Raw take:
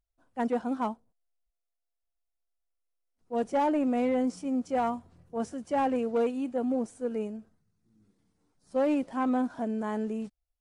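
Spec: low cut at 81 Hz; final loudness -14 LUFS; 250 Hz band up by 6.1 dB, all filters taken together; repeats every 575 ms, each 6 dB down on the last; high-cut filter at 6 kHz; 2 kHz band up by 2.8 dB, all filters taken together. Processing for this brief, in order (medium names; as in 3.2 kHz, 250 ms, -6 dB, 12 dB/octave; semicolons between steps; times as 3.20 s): high-pass 81 Hz; low-pass 6 kHz; peaking EQ 250 Hz +6.5 dB; peaking EQ 2 kHz +3.5 dB; feedback delay 575 ms, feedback 50%, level -6 dB; trim +11.5 dB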